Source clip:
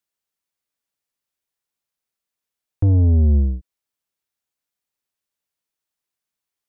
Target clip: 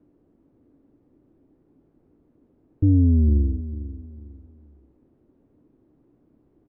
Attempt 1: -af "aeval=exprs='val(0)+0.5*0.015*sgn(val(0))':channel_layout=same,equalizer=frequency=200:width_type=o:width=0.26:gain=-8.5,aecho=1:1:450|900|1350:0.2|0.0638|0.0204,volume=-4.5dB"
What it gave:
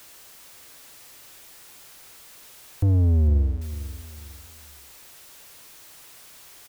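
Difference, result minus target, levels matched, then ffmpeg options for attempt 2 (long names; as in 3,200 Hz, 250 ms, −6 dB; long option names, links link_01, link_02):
250 Hz band −7.0 dB
-af "aeval=exprs='val(0)+0.5*0.015*sgn(val(0))':channel_layout=same,lowpass=frequency=290:width_type=q:width=3.3,equalizer=frequency=200:width_type=o:width=0.26:gain=-8.5,aecho=1:1:450|900|1350:0.2|0.0638|0.0204,volume=-4.5dB"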